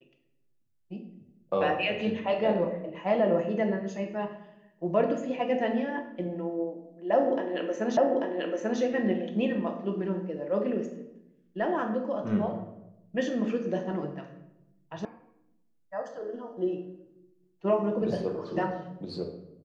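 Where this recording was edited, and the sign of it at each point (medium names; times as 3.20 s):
7.97 s: repeat of the last 0.84 s
15.05 s: sound stops dead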